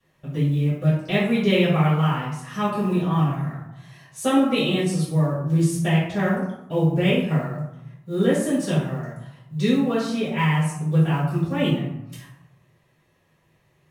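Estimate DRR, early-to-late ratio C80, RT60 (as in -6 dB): -14.5 dB, 5.5 dB, 0.85 s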